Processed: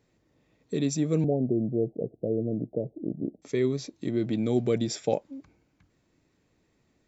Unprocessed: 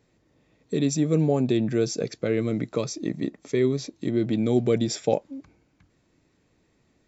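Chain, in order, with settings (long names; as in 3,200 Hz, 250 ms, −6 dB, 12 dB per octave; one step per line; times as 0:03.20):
0:01.24–0:03.42: Butterworth low-pass 740 Hz 72 dB per octave
level −3.5 dB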